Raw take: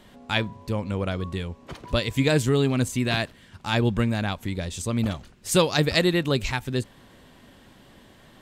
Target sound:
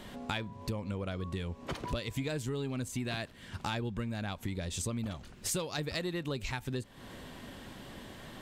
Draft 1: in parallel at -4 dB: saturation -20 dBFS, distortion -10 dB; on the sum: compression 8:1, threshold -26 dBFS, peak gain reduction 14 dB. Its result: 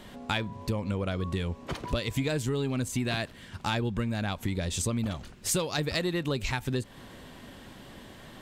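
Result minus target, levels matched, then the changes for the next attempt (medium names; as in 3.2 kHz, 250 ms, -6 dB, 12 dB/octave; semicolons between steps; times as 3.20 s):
compression: peak gain reduction -6 dB
change: compression 8:1, threshold -33 dBFS, peak gain reduction 20 dB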